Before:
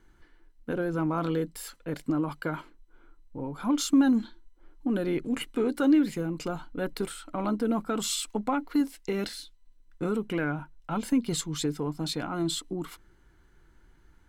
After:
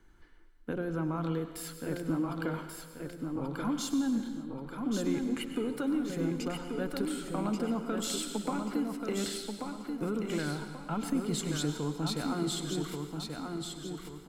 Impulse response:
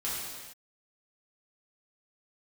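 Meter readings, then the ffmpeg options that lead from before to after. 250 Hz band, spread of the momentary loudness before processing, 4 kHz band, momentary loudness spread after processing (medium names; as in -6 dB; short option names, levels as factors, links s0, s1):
-4.5 dB, 13 LU, -2.5 dB, 8 LU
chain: -filter_complex "[0:a]acrossover=split=190[s0][s1];[s1]acompressor=threshold=0.0282:ratio=6[s2];[s0][s2]amix=inputs=2:normalize=0,aecho=1:1:1134|2268|3402|4536|5670:0.562|0.214|0.0812|0.0309|0.0117,asplit=2[s3][s4];[1:a]atrim=start_sample=2205,adelay=97[s5];[s4][s5]afir=irnorm=-1:irlink=0,volume=0.2[s6];[s3][s6]amix=inputs=2:normalize=0,volume=0.841"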